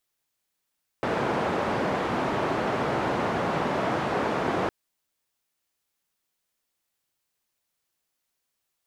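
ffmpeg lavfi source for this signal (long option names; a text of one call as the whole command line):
ffmpeg -f lavfi -i "anoisesrc=color=white:duration=3.66:sample_rate=44100:seed=1,highpass=frequency=120,lowpass=frequency=900,volume=-7.7dB" out.wav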